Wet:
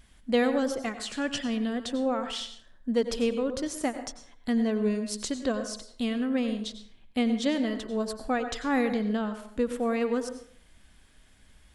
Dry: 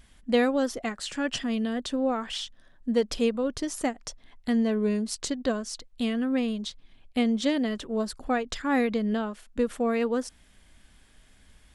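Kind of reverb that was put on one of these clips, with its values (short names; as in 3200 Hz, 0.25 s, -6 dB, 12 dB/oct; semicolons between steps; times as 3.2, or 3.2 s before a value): plate-style reverb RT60 0.57 s, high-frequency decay 0.6×, pre-delay 80 ms, DRR 9 dB; gain -1.5 dB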